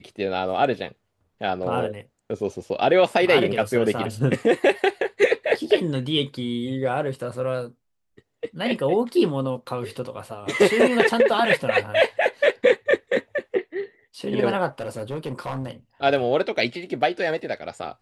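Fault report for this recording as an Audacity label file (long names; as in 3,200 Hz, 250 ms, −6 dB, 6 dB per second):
14.800000	15.710000	clipping −24 dBFS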